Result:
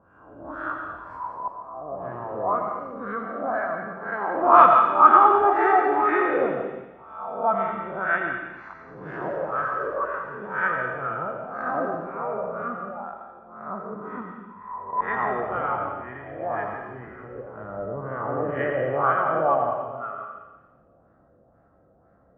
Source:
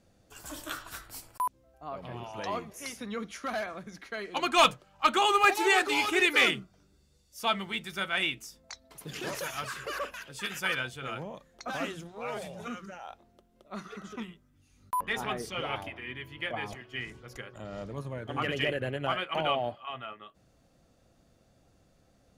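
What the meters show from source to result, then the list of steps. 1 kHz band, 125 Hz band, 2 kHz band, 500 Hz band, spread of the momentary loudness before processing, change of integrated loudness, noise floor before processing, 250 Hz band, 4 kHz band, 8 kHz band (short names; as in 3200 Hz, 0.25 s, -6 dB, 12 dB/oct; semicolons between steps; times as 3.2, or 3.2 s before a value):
+11.0 dB, +2.5 dB, +2.0 dB, +8.5 dB, 20 LU, +7.0 dB, -66 dBFS, +5.0 dB, under -20 dB, under -30 dB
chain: spectral swells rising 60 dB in 0.87 s; HPF 56 Hz; LFO low-pass sine 2 Hz 500–1700 Hz; resonant high shelf 1900 Hz -11.5 dB, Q 1.5; on a send: thin delay 85 ms, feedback 63%, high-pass 2500 Hz, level -4.5 dB; on the sum: digital reverb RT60 1 s, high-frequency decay 1×, pre-delay 65 ms, DRR 3.5 dB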